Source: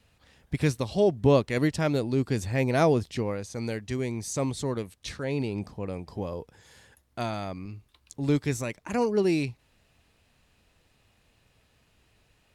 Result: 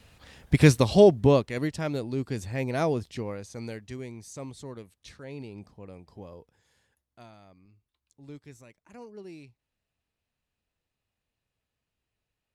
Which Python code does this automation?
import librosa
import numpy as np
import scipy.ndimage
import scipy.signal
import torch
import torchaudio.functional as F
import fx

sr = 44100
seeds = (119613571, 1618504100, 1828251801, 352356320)

y = fx.gain(x, sr, db=fx.line((0.97, 8.0), (1.53, -4.5), (3.57, -4.5), (4.29, -11.0), (6.34, -11.0), (7.37, -20.0)))